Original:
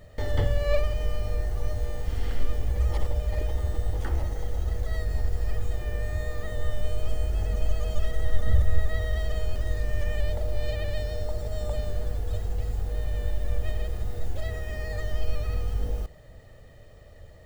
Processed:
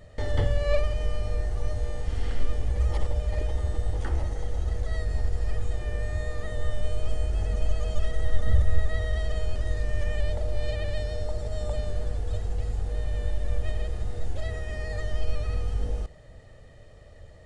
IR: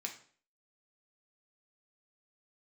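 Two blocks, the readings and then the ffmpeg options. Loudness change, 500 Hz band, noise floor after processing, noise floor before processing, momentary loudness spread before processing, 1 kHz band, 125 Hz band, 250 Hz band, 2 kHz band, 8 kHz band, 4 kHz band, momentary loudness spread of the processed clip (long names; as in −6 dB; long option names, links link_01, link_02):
0.0 dB, 0.0 dB, −48 dBFS, −48 dBFS, 6 LU, 0.0 dB, 0.0 dB, 0.0 dB, 0.0 dB, can't be measured, 0.0 dB, 6 LU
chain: -af "aresample=22050,aresample=44100"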